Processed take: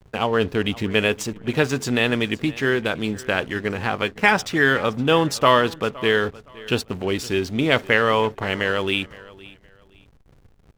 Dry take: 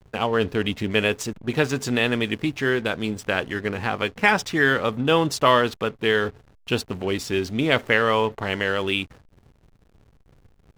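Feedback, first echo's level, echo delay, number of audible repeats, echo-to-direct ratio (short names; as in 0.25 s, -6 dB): 26%, -20.5 dB, 0.516 s, 2, -20.0 dB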